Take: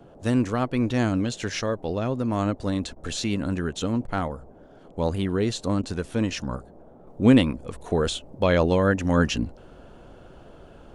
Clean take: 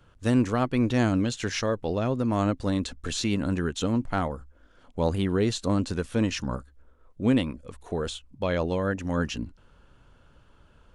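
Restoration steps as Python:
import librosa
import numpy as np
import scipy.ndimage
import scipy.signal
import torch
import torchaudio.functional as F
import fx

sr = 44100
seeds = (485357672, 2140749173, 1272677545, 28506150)

y = fx.fix_interpolate(x, sr, at_s=(2.95, 4.07, 5.82), length_ms=11.0)
y = fx.noise_reduce(y, sr, print_start_s=4.45, print_end_s=4.95, reduce_db=9.0)
y = fx.gain(y, sr, db=fx.steps((0.0, 0.0), (7.07, -6.5)))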